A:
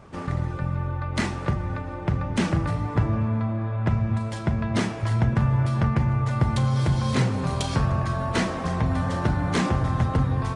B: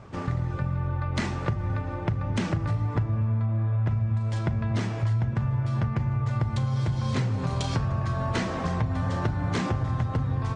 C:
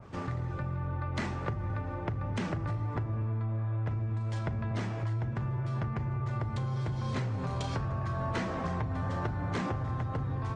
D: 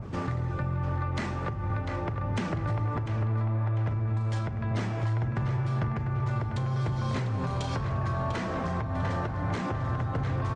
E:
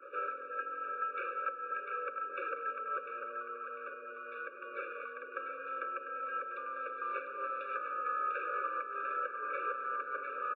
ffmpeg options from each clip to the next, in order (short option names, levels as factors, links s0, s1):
-af "lowpass=f=8000:w=0.5412,lowpass=f=8000:w=1.3066,equalizer=f=110:t=o:w=0.32:g=9,acompressor=threshold=0.0708:ratio=6"
-filter_complex "[0:a]acrossover=split=470|1600[s0][s1][s2];[s0]asoftclip=type=tanh:threshold=0.0562[s3];[s3][s1][s2]amix=inputs=3:normalize=0,adynamicequalizer=threshold=0.00398:dfrequency=2500:dqfactor=0.7:tfrequency=2500:tqfactor=0.7:attack=5:release=100:ratio=0.375:range=3:mode=cutabove:tftype=highshelf,volume=0.668"
-filter_complex "[0:a]acrossover=split=400[s0][s1];[s0]acompressor=mode=upward:threshold=0.0178:ratio=2.5[s2];[s1]asplit=2[s3][s4];[s4]adelay=697,lowpass=f=3700:p=1,volume=0.447,asplit=2[s5][s6];[s6]adelay=697,lowpass=f=3700:p=1,volume=0.46,asplit=2[s7][s8];[s8]adelay=697,lowpass=f=3700:p=1,volume=0.46,asplit=2[s9][s10];[s10]adelay=697,lowpass=f=3700:p=1,volume=0.46,asplit=2[s11][s12];[s12]adelay=697,lowpass=f=3700:p=1,volume=0.46[s13];[s3][s5][s7][s9][s11][s13]amix=inputs=6:normalize=0[s14];[s2][s14]amix=inputs=2:normalize=0,alimiter=level_in=1.19:limit=0.0631:level=0:latency=1:release=248,volume=0.841,volume=1.68"
-af "highpass=f=420:t=q:w=0.5412,highpass=f=420:t=q:w=1.307,lowpass=f=2300:t=q:w=0.5176,lowpass=f=2300:t=q:w=0.7071,lowpass=f=2300:t=q:w=1.932,afreqshift=140,aecho=1:1:571:0.141,afftfilt=real='re*eq(mod(floor(b*sr/1024/570),2),0)':imag='im*eq(mod(floor(b*sr/1024/570),2),0)':win_size=1024:overlap=0.75,volume=1.33"